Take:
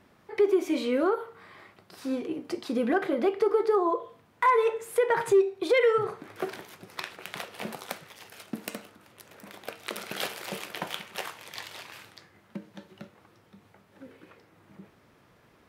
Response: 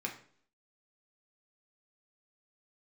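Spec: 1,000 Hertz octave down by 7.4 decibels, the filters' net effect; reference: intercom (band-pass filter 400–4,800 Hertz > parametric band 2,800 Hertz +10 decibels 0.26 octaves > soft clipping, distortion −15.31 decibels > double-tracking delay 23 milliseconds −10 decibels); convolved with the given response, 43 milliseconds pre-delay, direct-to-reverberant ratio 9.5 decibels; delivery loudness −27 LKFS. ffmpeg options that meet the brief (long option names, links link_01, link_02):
-filter_complex "[0:a]equalizer=frequency=1000:width_type=o:gain=-8.5,asplit=2[link_01][link_02];[1:a]atrim=start_sample=2205,adelay=43[link_03];[link_02][link_03]afir=irnorm=-1:irlink=0,volume=-11.5dB[link_04];[link_01][link_04]amix=inputs=2:normalize=0,highpass=400,lowpass=4800,equalizer=frequency=2800:width_type=o:width=0.26:gain=10,asoftclip=threshold=-21.5dB,asplit=2[link_05][link_06];[link_06]adelay=23,volume=-10dB[link_07];[link_05][link_07]amix=inputs=2:normalize=0,volume=6dB"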